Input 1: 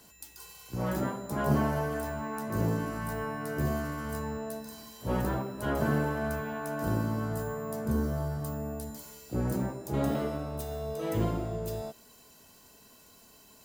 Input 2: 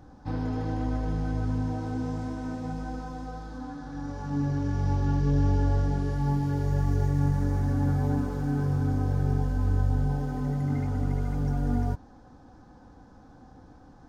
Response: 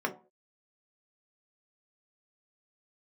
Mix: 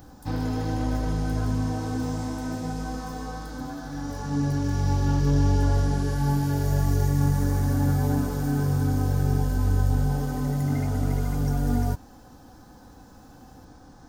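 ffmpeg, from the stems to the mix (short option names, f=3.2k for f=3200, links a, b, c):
-filter_complex "[0:a]acompressor=threshold=-30dB:ratio=6,asplit=2[a][b];[b]adelay=2.5,afreqshift=0.72[c];[a][c]amix=inputs=2:normalize=1,volume=-6dB[d];[1:a]aemphasis=mode=production:type=75kf,volume=2.5dB[e];[d][e]amix=inputs=2:normalize=0"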